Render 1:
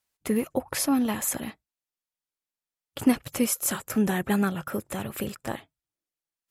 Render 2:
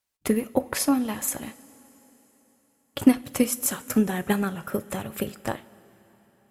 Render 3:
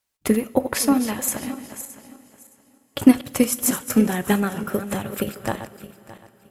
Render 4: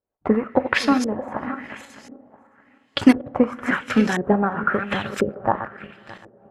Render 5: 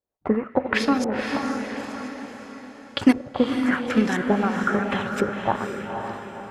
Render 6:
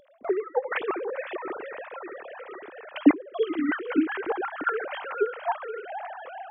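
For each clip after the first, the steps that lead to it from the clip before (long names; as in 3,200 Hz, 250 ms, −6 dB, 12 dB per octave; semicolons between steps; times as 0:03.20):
transient designer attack +7 dB, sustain −2 dB; coupled-rooms reverb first 0.29 s, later 4.1 s, from −18 dB, DRR 12 dB; level −2 dB
feedback delay that plays each chunk backwards 309 ms, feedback 44%, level −10.5 dB; level +3.5 dB
parametric band 1,600 Hz +8.5 dB 1.5 octaves; auto-filter low-pass saw up 0.96 Hz 420–6,400 Hz; level −1 dB
feedback delay with all-pass diffusion 507 ms, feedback 47%, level −5.5 dB; level −3 dB
three sine waves on the formant tracks; upward compression, threshold −28 dBFS; level −4.5 dB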